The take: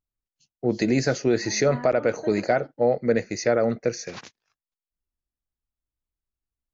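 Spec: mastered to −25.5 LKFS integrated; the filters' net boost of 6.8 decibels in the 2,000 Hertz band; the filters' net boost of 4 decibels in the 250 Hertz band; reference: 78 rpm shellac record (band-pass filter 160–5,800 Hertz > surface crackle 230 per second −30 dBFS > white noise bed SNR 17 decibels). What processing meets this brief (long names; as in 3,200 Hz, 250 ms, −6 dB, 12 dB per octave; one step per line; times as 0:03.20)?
band-pass filter 160–5,800 Hz
parametric band 250 Hz +5.5 dB
parametric band 2,000 Hz +8.5 dB
surface crackle 230 per second −30 dBFS
white noise bed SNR 17 dB
level −4 dB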